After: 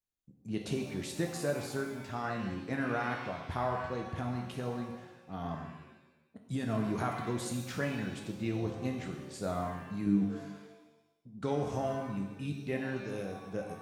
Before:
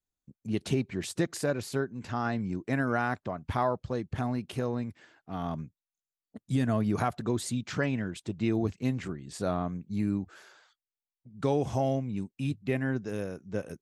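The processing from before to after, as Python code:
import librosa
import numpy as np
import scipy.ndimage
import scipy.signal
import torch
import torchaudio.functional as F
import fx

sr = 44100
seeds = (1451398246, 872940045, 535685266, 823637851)

y = fx.peak_eq(x, sr, hz=250.0, db=8.0, octaves=2.1, at=(10.06, 11.39))
y = fx.rev_shimmer(y, sr, seeds[0], rt60_s=1.0, semitones=7, shimmer_db=-8, drr_db=2.0)
y = y * 10.0 ** (-6.0 / 20.0)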